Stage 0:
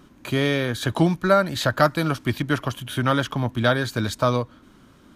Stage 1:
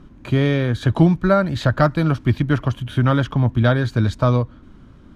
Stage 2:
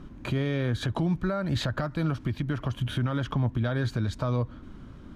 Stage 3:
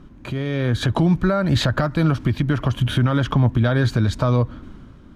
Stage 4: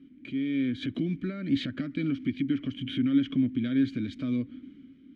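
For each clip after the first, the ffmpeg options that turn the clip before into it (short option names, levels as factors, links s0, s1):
-af "aemphasis=mode=reproduction:type=bsi"
-af "acompressor=threshold=0.158:ratio=6,alimiter=limit=0.112:level=0:latency=1:release=165"
-af "dynaudnorm=f=110:g=11:m=2.99"
-filter_complex "[0:a]asplit=3[s0][s1][s2];[s0]bandpass=f=270:t=q:w=8,volume=1[s3];[s1]bandpass=f=2290:t=q:w=8,volume=0.501[s4];[s2]bandpass=f=3010:t=q:w=8,volume=0.355[s5];[s3][s4][s5]amix=inputs=3:normalize=0,volume=1.26"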